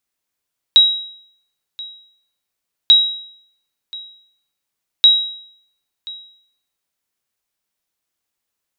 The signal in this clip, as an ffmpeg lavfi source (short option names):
-f lavfi -i "aevalsrc='0.75*(sin(2*PI*3840*mod(t,2.14))*exp(-6.91*mod(t,2.14)/0.64)+0.0841*sin(2*PI*3840*max(mod(t,2.14)-1.03,0))*exp(-6.91*max(mod(t,2.14)-1.03,0)/0.64))':d=6.42:s=44100"